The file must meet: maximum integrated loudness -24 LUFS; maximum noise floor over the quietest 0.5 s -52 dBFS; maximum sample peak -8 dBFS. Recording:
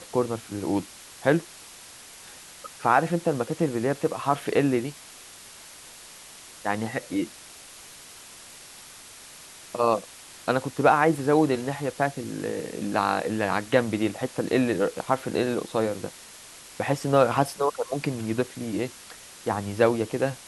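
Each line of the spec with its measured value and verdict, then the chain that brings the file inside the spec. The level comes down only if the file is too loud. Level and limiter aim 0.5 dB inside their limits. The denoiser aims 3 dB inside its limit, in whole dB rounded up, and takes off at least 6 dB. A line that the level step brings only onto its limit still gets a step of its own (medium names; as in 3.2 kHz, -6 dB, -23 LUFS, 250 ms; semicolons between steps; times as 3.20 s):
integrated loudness -26.0 LUFS: pass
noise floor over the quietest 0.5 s -46 dBFS: fail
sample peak -5.5 dBFS: fail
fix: noise reduction 9 dB, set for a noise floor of -46 dBFS; peak limiter -8.5 dBFS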